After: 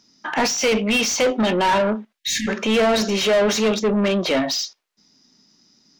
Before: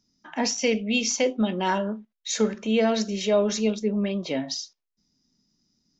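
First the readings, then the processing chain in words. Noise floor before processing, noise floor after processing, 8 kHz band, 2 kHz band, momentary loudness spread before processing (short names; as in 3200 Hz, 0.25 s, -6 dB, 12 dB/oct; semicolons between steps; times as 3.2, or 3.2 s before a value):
-83 dBFS, -73 dBFS, n/a, +9.0 dB, 10 LU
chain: overdrive pedal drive 26 dB, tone 3200 Hz, clips at -10.5 dBFS; spectral delete 2.19–2.48, 340–1600 Hz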